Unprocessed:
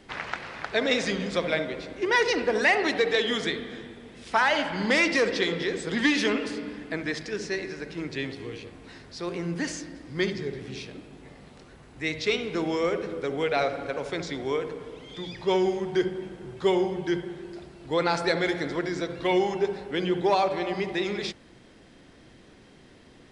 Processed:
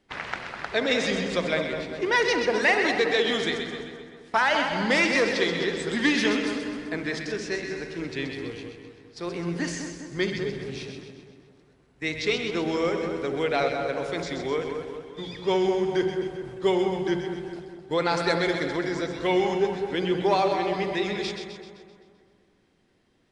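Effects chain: gate -40 dBFS, range -15 dB; split-band echo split 1600 Hz, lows 0.203 s, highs 0.129 s, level -6.5 dB

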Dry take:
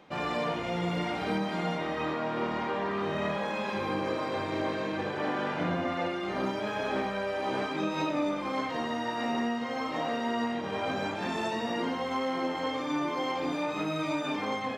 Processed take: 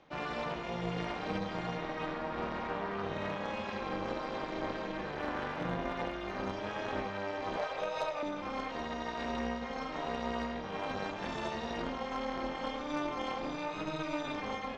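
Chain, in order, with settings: elliptic band-pass 150–6400 Hz; 5.13–6.51 crackle 98/s -51 dBFS; AM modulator 300 Hz, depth 80%; 7.57–8.23 resonant low shelf 400 Hz -9.5 dB, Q 3; added harmonics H 6 -19 dB, 8 -23 dB, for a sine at -18.5 dBFS; gain -1.5 dB

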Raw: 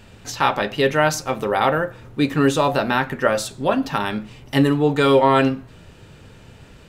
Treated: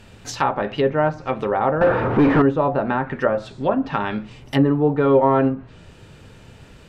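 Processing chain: 1.81–2.42 overdrive pedal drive 40 dB, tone 4000 Hz, clips at -6.5 dBFS; treble ducked by the level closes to 1100 Hz, closed at -15.5 dBFS

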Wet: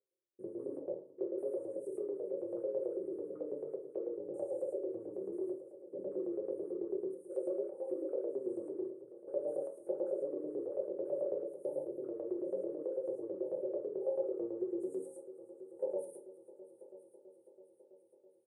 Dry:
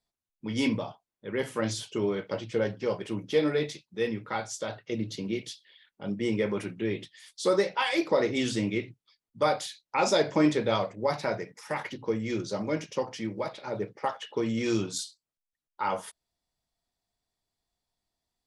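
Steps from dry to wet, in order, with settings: stepped spectrum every 0.2 s; Chebyshev band-stop 540–8800 Hz, order 5; comb 2.3 ms, depth 80%; compressor, threshold -35 dBFS, peak gain reduction 12 dB; limiter -38 dBFS, peak gain reduction 11 dB; LFO band-pass saw up 9.1 Hz 560–2500 Hz; Bessel high-pass 230 Hz, order 2; multi-head echo 0.329 s, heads all three, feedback 60%, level -21.5 dB; reverb RT60 0.40 s, pre-delay 3 ms, DRR 0 dB; gain +14.5 dB

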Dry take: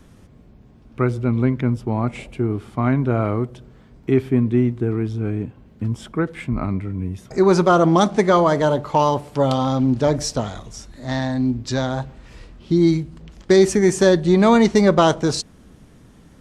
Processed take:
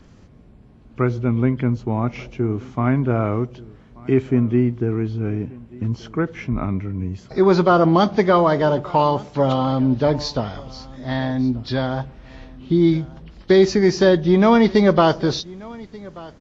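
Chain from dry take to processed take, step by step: nonlinear frequency compression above 2800 Hz 1.5:1; echo 1.184 s -22 dB

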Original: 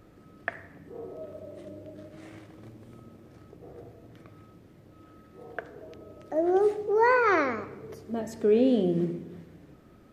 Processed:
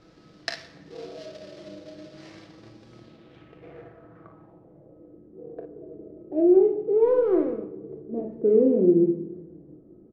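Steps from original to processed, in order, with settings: switching dead time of 0.16 ms; low shelf 170 Hz -5.5 dB; comb 6.1 ms, depth 37%; dynamic EQ 2400 Hz, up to +6 dB, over -51 dBFS, Q 2.4; low-pass sweep 5000 Hz -> 390 Hz, 2.94–5.22; on a send: early reflections 26 ms -12 dB, 42 ms -9 dB, 56 ms -9 dB

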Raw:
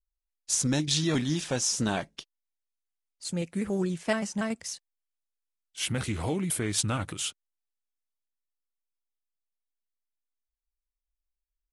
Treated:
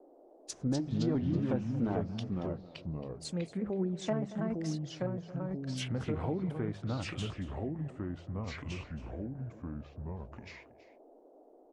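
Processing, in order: treble ducked by the level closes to 780 Hz, closed at -25 dBFS; notches 50/100/150/200 Hz; on a send: echo 0.23 s -16.5 dB; on the sum: echoes that change speed 0.154 s, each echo -3 st, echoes 2; band noise 270–710 Hz -55 dBFS; gain -4 dB

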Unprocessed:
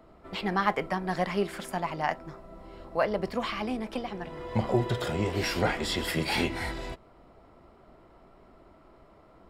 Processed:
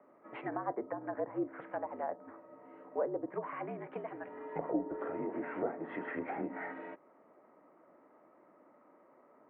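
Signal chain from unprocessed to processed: mistuned SSB -61 Hz 320–2200 Hz; treble ducked by the level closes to 670 Hz, closed at -27 dBFS; gain -5 dB

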